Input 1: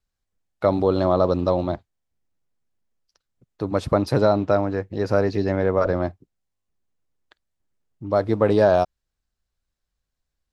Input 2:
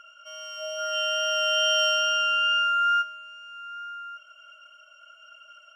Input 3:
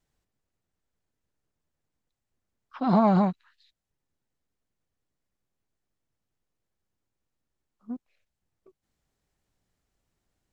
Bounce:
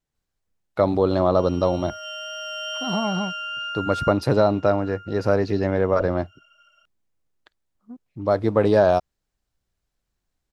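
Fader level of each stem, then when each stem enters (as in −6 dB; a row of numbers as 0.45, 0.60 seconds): 0.0, −7.5, −5.0 decibels; 0.15, 1.10, 0.00 seconds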